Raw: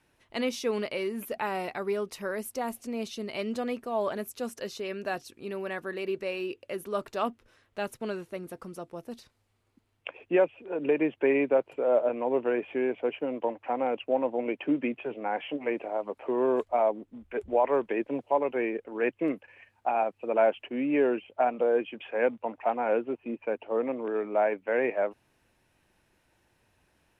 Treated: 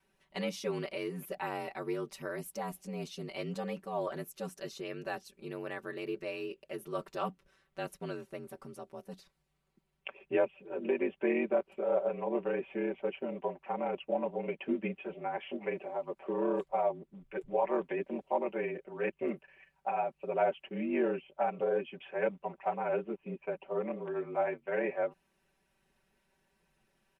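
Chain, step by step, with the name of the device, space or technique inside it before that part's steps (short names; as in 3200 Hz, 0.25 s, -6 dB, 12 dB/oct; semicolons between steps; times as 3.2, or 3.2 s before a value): ring-modulated robot voice (ring modulator 48 Hz; comb 5.2 ms, depth 91%); gain -5.5 dB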